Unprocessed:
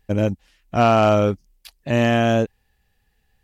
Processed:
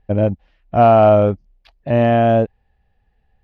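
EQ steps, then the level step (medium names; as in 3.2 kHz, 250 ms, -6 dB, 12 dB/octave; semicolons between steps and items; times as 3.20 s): distance through air 290 m; bass shelf 200 Hz +6 dB; peaking EQ 670 Hz +8.5 dB 0.89 oct; -1.0 dB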